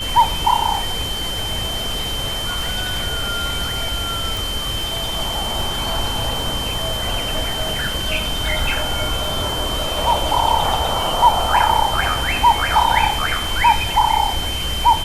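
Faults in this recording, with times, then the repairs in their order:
surface crackle 45 per second −27 dBFS
whistle 3,100 Hz −24 dBFS
0:04.37: click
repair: click removal
notch filter 3,100 Hz, Q 30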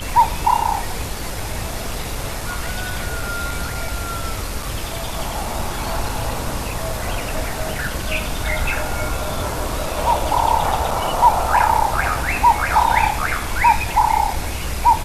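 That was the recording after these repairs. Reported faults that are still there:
none of them is left

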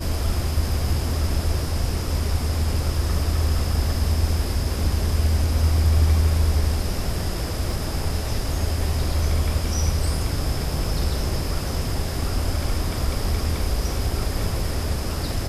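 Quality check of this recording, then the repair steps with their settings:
0:07.71: drop-out 2.5 ms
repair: repair the gap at 0:07.71, 2.5 ms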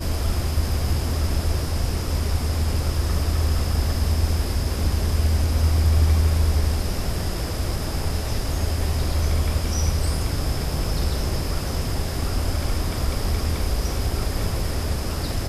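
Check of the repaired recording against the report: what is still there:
none of them is left

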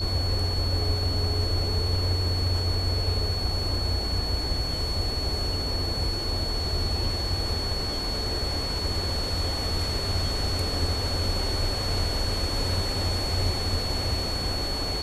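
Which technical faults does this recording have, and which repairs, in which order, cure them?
whistle 4,400 Hz −30 dBFS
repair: notch filter 4,400 Hz, Q 30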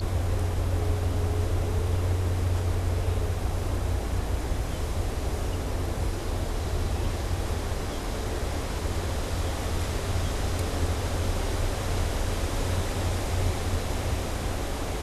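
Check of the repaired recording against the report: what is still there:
none of them is left

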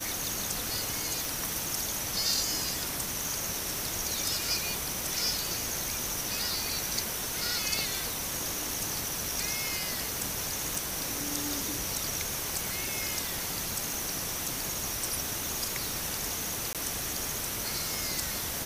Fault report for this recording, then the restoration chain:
surface crackle 45 per second −36 dBFS
0:01.25: click
0:07.79: click
0:10.75: click
0:16.73–0:16.75: drop-out 17 ms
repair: click removal
repair the gap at 0:16.73, 17 ms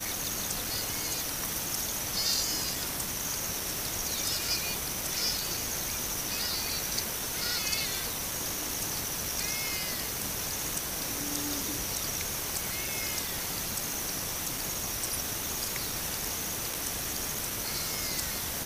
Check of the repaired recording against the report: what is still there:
none of them is left

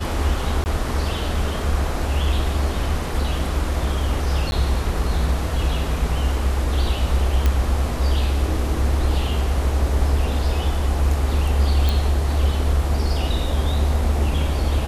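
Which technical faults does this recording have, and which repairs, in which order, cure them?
0:00.64–0:00.66: drop-out 19 ms
0:04.51–0:04.52: drop-out 11 ms
0:07.46: click −7 dBFS
0:11.89: click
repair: click removal
repair the gap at 0:00.64, 19 ms
repair the gap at 0:04.51, 11 ms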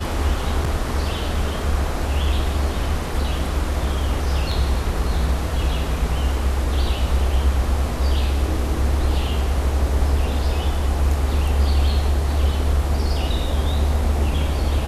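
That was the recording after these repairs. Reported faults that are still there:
none of them is left

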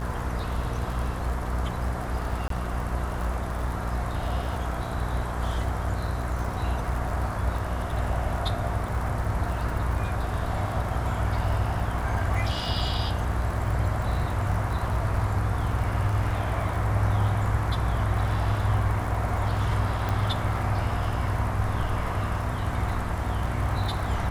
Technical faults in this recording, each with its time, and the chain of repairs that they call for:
mains buzz 60 Hz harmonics 34 −31 dBFS
surface crackle 47 per second −33 dBFS
0:02.48–0:02.50: drop-out 23 ms
0:20.09: click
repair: click removal
hum removal 60 Hz, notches 34
repair the gap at 0:02.48, 23 ms

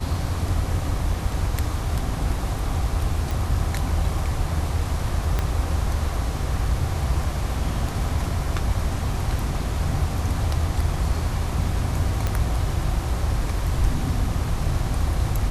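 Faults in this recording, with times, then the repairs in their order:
0:03.31: click
0:05.39: click −10 dBFS
0:12.27: click −11 dBFS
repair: click removal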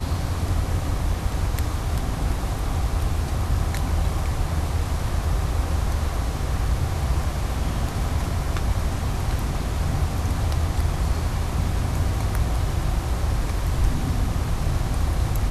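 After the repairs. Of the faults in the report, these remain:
0:05.39: click

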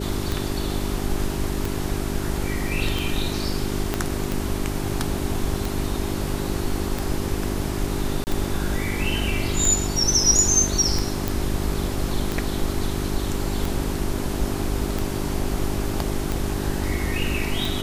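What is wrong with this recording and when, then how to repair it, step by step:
mains hum 50 Hz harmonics 8 −29 dBFS
scratch tick 45 rpm
0:03.94: click −8 dBFS
0:08.24–0:08.27: drop-out 29 ms
0:11.28: click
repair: click removal
hum removal 50 Hz, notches 8
repair the gap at 0:08.24, 29 ms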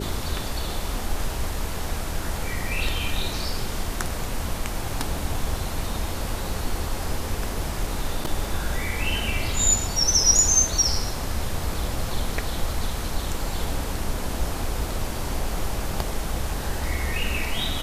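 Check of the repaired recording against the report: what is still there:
0:03.94: click

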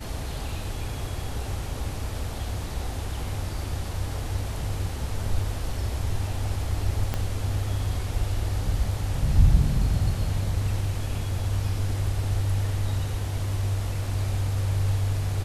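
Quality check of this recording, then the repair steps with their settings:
0:07.14: click −13 dBFS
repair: click removal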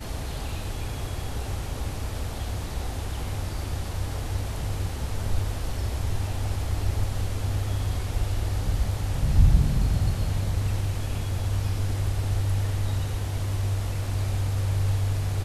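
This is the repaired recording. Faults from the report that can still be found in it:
0:07.14: click

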